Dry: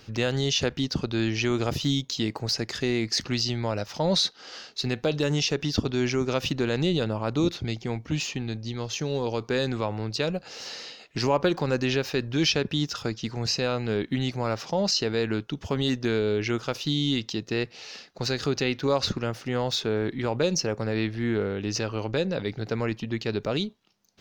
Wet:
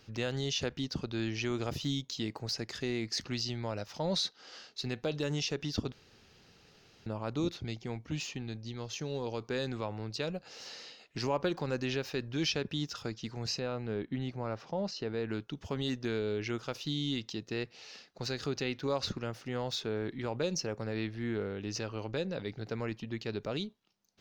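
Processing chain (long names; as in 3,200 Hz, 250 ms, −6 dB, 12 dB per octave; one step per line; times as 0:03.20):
0:05.92–0:07.06: fill with room tone
0:13.59–0:15.29: low-pass filter 1,700 Hz 6 dB per octave
level −8.5 dB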